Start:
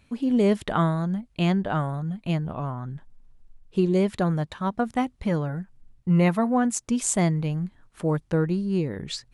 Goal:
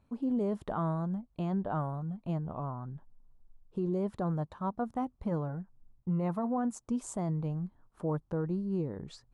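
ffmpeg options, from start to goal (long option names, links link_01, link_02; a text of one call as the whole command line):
ffmpeg -i in.wav -af "highshelf=frequency=1500:width_type=q:width=1.5:gain=-10.5,alimiter=limit=-17dB:level=0:latency=1:release=16,volume=-7.5dB" out.wav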